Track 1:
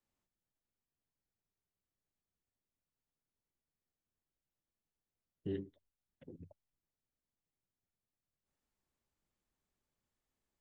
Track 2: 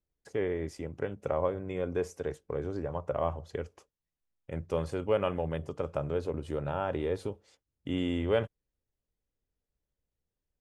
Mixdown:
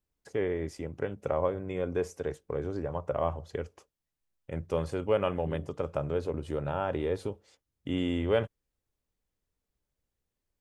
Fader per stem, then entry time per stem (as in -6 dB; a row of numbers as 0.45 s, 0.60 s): -4.5 dB, +1.0 dB; 0.00 s, 0.00 s